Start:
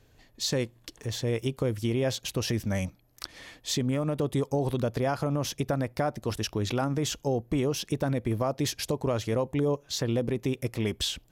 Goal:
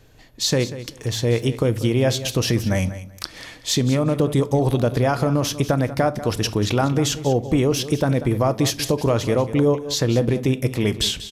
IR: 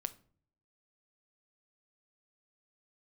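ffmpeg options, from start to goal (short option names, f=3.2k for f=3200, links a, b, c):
-filter_complex "[0:a]asplit=2[a][b];[b]aecho=0:1:190|380:0.2|0.0359[c];[a][c]amix=inputs=2:normalize=0,aresample=32000,aresample=44100,asplit=2[d][e];[1:a]atrim=start_sample=2205[f];[e][f]afir=irnorm=-1:irlink=0,volume=10.5dB[g];[d][g]amix=inputs=2:normalize=0,volume=-3.5dB"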